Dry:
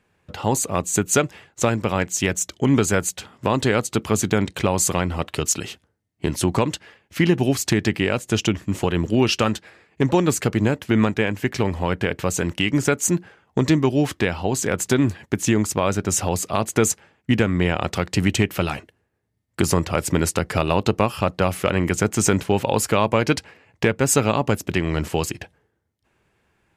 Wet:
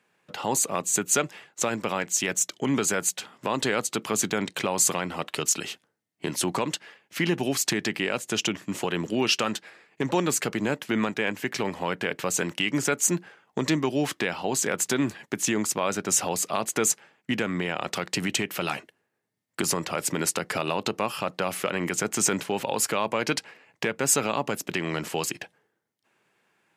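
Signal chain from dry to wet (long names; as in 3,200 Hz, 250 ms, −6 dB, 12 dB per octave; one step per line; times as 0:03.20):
brickwall limiter −10 dBFS, peak gain reduction 6 dB
high-pass filter 140 Hz 24 dB per octave
low-shelf EQ 470 Hz −7.5 dB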